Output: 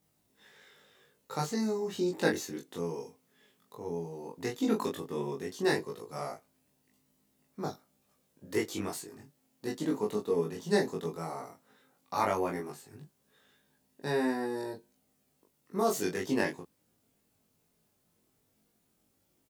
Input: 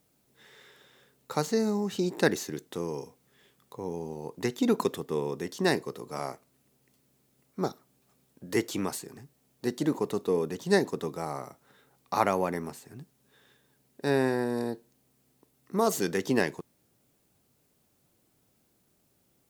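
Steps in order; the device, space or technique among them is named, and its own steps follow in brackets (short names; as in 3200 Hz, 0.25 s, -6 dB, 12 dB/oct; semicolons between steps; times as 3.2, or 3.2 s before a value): double-tracked vocal (doubler 19 ms -2 dB; chorus 0.14 Hz, delay 20 ms, depth 3.7 ms); gain -2.5 dB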